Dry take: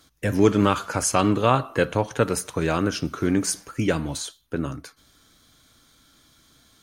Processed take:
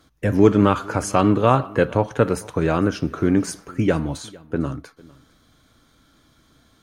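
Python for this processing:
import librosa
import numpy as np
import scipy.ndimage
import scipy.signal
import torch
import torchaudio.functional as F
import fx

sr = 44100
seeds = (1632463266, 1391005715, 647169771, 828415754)

p1 = fx.high_shelf(x, sr, hz=2500.0, db=-11.5)
p2 = p1 + fx.echo_single(p1, sr, ms=452, db=-23.5, dry=0)
y = p2 * librosa.db_to_amplitude(4.0)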